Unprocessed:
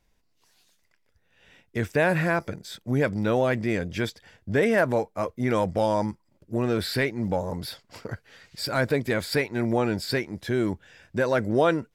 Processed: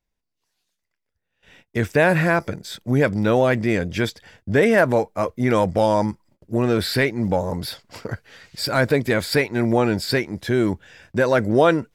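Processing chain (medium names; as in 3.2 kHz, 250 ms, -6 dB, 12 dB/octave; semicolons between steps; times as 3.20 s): gate -57 dBFS, range -17 dB; trim +5.5 dB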